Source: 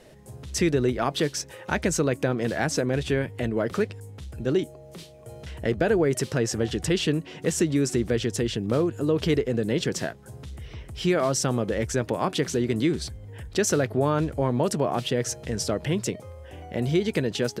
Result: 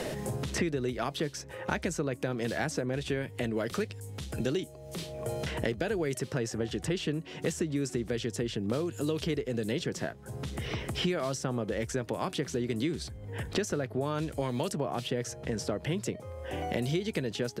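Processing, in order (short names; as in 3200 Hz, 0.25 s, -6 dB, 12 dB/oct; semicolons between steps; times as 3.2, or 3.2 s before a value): three-band squash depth 100%; gain -8 dB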